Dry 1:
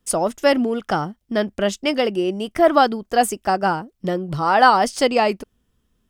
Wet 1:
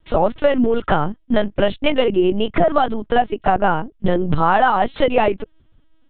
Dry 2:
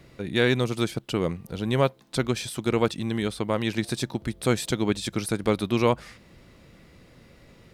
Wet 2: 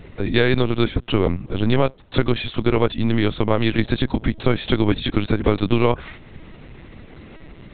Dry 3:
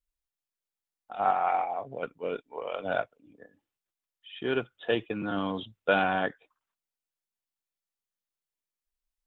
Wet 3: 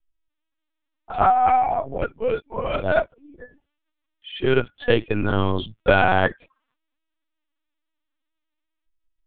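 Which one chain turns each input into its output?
low shelf 84 Hz +8.5 dB; compressor 8:1, threshold -20 dBFS; LPC vocoder at 8 kHz pitch kept; normalise peaks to -1.5 dBFS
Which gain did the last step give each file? +8.5, +8.5, +10.0 dB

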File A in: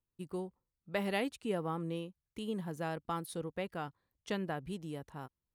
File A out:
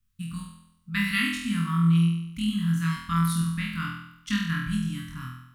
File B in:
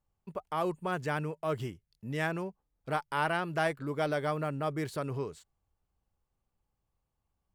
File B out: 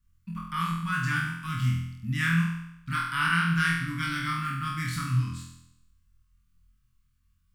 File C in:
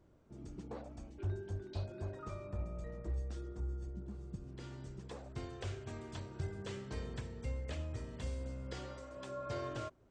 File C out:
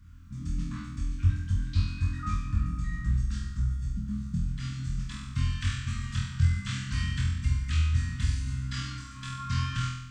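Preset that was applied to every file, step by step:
inverse Chebyshev band-stop 360–810 Hz, stop band 40 dB; low shelf 92 Hz +8.5 dB; flutter echo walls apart 4.1 m, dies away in 0.79 s; normalise peaks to -12 dBFS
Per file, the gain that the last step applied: +9.0, +4.5, +9.5 dB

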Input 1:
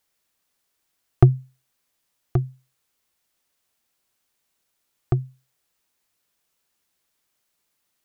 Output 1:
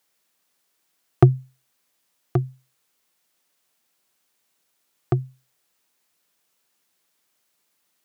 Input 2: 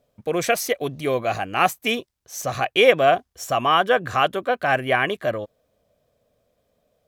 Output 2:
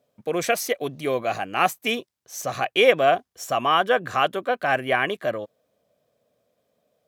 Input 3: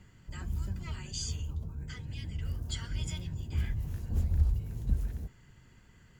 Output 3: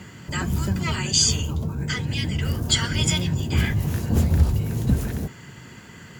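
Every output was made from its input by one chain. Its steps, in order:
HPF 140 Hz 12 dB/oct; match loudness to -23 LUFS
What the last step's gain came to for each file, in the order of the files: +3.5, -2.0, +19.5 dB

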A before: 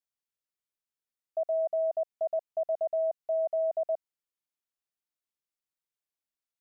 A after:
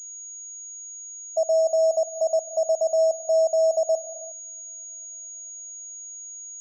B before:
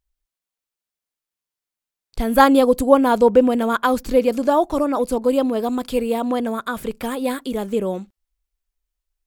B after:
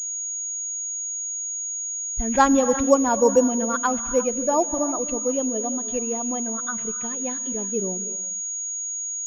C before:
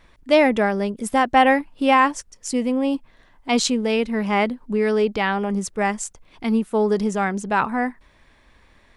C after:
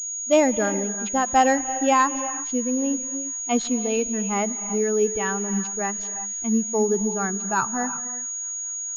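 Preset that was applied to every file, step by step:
per-bin expansion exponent 1.5; bell 2100 Hz -6.5 dB 0.29 oct; thin delay 0.221 s, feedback 83%, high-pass 1800 Hz, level -24 dB; non-linear reverb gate 0.38 s rising, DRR 11.5 dB; pulse-width modulation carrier 6700 Hz; match loudness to -23 LUFS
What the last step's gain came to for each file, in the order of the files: +8.5, -2.5, -1.0 dB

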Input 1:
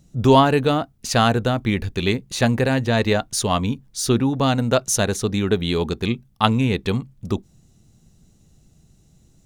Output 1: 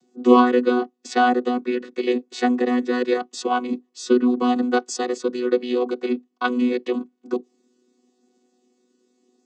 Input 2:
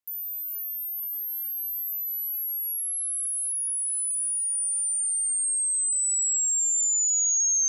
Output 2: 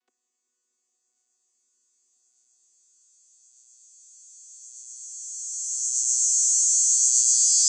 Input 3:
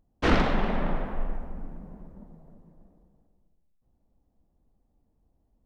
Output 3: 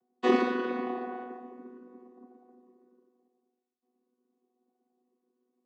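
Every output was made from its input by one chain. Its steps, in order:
chord vocoder bare fifth, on B3; tone controls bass -9 dB, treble +2 dB; gain +2.5 dB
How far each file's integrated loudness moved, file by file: -1.5, +5.5, -1.5 LU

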